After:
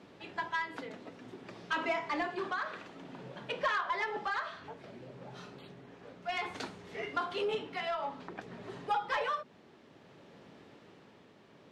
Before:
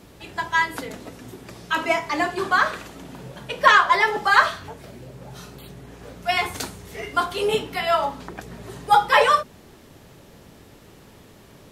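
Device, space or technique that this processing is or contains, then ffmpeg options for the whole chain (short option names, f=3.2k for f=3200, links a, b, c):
AM radio: -af "highpass=170,lowpass=3.7k,acompressor=threshold=-20dB:ratio=10,asoftclip=type=tanh:threshold=-18dB,tremolo=f=0.57:d=0.36,volume=-5.5dB"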